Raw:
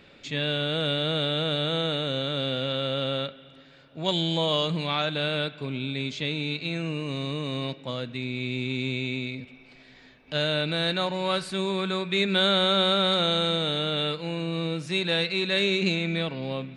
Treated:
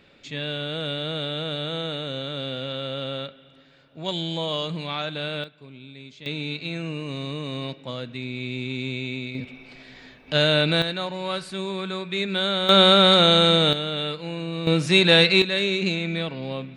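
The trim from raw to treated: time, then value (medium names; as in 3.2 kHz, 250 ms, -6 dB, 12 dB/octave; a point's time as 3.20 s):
-2.5 dB
from 5.44 s -12.5 dB
from 6.26 s -0.5 dB
from 9.35 s +6.5 dB
from 10.82 s -2 dB
from 12.69 s +8 dB
from 13.73 s -0.5 dB
from 14.67 s +10 dB
from 15.42 s +0.5 dB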